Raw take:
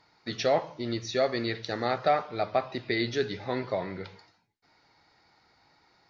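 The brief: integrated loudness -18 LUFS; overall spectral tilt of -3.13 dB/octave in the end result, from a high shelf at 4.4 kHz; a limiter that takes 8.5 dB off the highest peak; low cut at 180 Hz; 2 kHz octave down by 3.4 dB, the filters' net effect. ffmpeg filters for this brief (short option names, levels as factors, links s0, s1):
-af "highpass=180,equalizer=f=2000:t=o:g=-3,highshelf=f=4400:g=-4.5,volume=6.68,alimiter=limit=0.531:level=0:latency=1"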